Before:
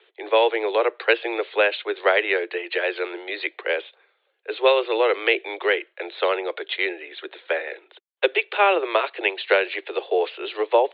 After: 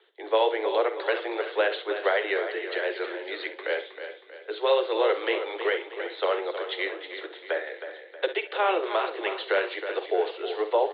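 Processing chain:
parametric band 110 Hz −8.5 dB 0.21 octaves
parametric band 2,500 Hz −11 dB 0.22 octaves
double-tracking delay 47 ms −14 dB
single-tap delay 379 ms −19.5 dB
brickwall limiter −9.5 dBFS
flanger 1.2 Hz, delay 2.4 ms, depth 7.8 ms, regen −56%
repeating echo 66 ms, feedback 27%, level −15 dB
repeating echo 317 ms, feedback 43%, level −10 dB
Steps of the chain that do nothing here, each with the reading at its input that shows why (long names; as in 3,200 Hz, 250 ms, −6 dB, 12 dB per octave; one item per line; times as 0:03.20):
parametric band 110 Hz: nothing at its input below 290 Hz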